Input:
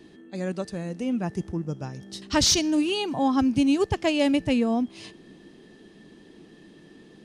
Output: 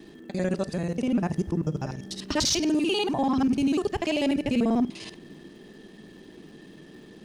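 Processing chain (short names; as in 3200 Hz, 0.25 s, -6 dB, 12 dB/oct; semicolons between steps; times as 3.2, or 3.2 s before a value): local time reversal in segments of 49 ms; limiter -20 dBFS, peak gain reduction 7.5 dB; hard clip -21 dBFS, distortion -33 dB; crackle 240/s -57 dBFS; on a send: reverb, pre-delay 5 ms, DRR 16.5 dB; on the sum: gain +3 dB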